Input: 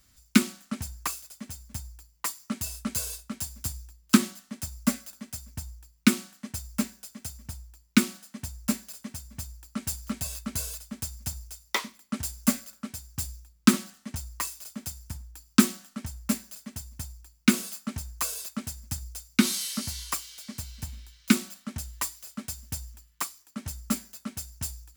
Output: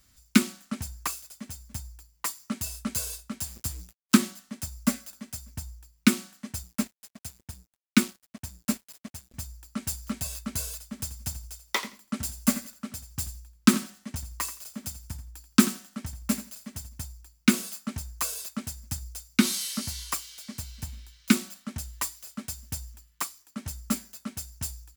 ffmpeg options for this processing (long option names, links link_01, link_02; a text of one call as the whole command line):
ffmpeg -i in.wav -filter_complex "[0:a]asettb=1/sr,asplit=3[link_01][link_02][link_03];[link_01]atrim=end=3.454[link_04];[link_02]atrim=start=3.45:end=4.22,asetpts=PTS-STARTPTS,afade=type=in:duration=0.004:curve=qsin,afade=type=out:start_time=0.766:duration=0.004:curve=qsin,acrusher=bits=6:mix=0:aa=0.5[link_05];[link_03]atrim=start=4.216[link_06];[link_04][link_05]acrossfade=duration=0.004:curve1=hsin:curve2=qsin[link_07];[link_07][link_06]acrossfade=duration=0.004:curve1=qsin:curve2=hsin,asettb=1/sr,asplit=3[link_08][link_09][link_10];[link_08]atrim=end=6.634[link_11];[link_09]atrim=start=6.63:end=9.34,asetpts=PTS-STARTPTS,afade=type=in:duration=0.004:curve=qsin,afade=type=out:start_time=2.706:duration=0.004:curve=qsin,aeval=exprs='sgn(val(0))*max(abs(val(0))-0.00631,0)':channel_layout=same[link_12];[link_10]atrim=start=9.336[link_13];[link_11][link_12]acrossfade=duration=0.004:curve1=hsin:curve2=qsin[link_14];[link_14][link_13]acrossfade=duration=0.004:curve1=qsin:curve2=hsin,asplit=3[link_15][link_16][link_17];[link_15]afade=type=out:start_time=10.92:duration=0.02[link_18];[link_16]aecho=1:1:85|170:0.2|0.0339,afade=type=in:start_time=10.92:duration=0.02,afade=type=out:start_time=16.88:duration=0.02[link_19];[link_17]afade=type=in:start_time=16.88:duration=0.02[link_20];[link_18][link_19][link_20]amix=inputs=3:normalize=0" out.wav